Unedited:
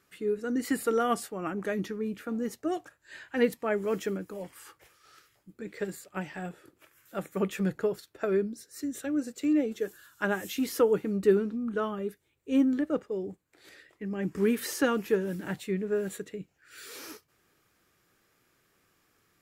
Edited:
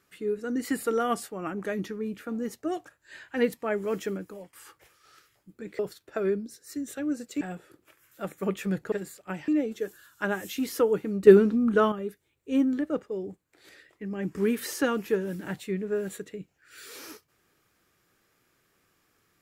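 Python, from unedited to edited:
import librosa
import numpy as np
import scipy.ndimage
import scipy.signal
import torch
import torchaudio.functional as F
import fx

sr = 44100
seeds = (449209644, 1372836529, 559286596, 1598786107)

y = fx.edit(x, sr, fx.fade_out_to(start_s=4.17, length_s=0.36, curve='qsin', floor_db=-18.5),
    fx.swap(start_s=5.79, length_s=0.56, other_s=7.86, other_length_s=1.62),
    fx.clip_gain(start_s=11.27, length_s=0.65, db=8.5), tone=tone)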